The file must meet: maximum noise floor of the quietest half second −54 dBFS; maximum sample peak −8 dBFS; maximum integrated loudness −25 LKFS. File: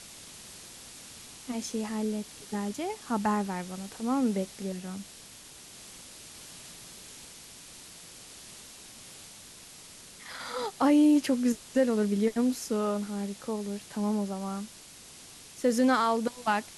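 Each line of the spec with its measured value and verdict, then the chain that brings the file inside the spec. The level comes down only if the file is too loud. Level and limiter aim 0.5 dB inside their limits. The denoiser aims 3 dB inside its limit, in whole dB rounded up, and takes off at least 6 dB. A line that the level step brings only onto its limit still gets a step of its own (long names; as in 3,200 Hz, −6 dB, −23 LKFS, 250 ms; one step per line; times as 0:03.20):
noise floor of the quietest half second −50 dBFS: out of spec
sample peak −14.0 dBFS: in spec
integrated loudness −29.5 LKFS: in spec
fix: broadband denoise 7 dB, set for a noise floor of −50 dBFS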